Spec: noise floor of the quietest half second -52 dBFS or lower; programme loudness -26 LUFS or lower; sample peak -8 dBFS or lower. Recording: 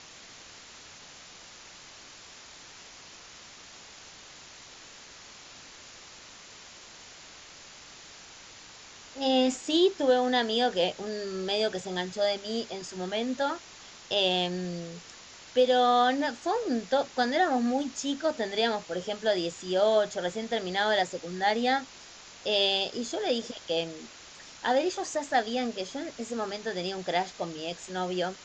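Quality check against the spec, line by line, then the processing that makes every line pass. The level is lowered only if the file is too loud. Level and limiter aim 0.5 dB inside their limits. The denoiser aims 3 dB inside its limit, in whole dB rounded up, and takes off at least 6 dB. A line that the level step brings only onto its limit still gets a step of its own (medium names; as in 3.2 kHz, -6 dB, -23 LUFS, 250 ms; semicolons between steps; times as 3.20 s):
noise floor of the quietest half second -49 dBFS: fail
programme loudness -28.5 LUFS: pass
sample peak -13.0 dBFS: pass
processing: noise reduction 6 dB, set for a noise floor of -49 dBFS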